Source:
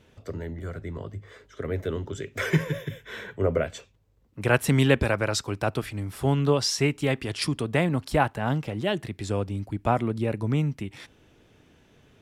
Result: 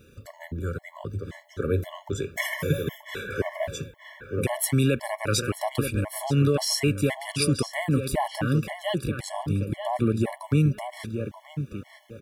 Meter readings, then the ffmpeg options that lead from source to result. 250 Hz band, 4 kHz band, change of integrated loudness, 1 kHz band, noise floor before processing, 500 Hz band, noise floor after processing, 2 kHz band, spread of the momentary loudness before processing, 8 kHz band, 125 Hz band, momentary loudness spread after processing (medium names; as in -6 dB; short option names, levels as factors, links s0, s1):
+1.0 dB, +0.5 dB, -0.5 dB, -2.0 dB, -60 dBFS, -1.5 dB, -54 dBFS, -2.5 dB, 14 LU, +4.0 dB, +1.0 dB, 13 LU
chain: -filter_complex "[0:a]highshelf=f=9000:g=5.5,alimiter=limit=0.126:level=0:latency=1:release=44,aexciter=amount=2.1:drive=4.7:freq=9300,asplit=2[s0][s1];[s1]adelay=930,lowpass=f=2700:p=1,volume=0.447,asplit=2[s2][s3];[s3]adelay=930,lowpass=f=2700:p=1,volume=0.27,asplit=2[s4][s5];[s5]adelay=930,lowpass=f=2700:p=1,volume=0.27[s6];[s0][s2][s4][s6]amix=inputs=4:normalize=0,afftfilt=real='re*gt(sin(2*PI*1.9*pts/sr)*(1-2*mod(floor(b*sr/1024/570),2)),0)':imag='im*gt(sin(2*PI*1.9*pts/sr)*(1-2*mod(floor(b*sr/1024/570),2)),0)':win_size=1024:overlap=0.75,volume=1.78"